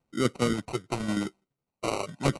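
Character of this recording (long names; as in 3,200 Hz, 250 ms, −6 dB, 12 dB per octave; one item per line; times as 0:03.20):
phaser sweep stages 8, 0.89 Hz, lowest notch 210–1,400 Hz
tremolo saw down 12 Hz, depth 55%
aliases and images of a low sample rate 1,700 Hz, jitter 0%
AAC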